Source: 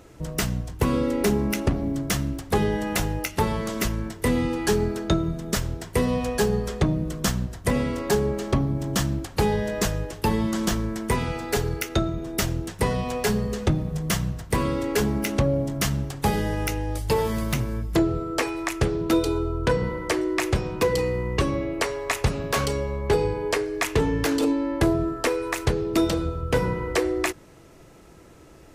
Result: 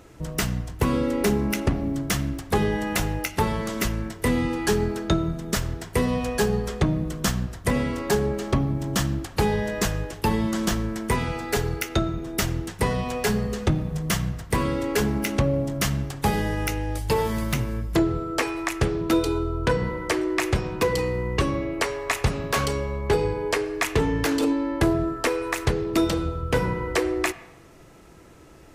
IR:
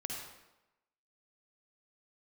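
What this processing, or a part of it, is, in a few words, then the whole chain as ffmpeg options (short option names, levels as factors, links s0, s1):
filtered reverb send: -filter_complex "[0:a]asplit=2[s0][s1];[s1]highpass=f=510:w=0.5412,highpass=f=510:w=1.3066,lowpass=3400[s2];[1:a]atrim=start_sample=2205[s3];[s2][s3]afir=irnorm=-1:irlink=0,volume=0.224[s4];[s0][s4]amix=inputs=2:normalize=0"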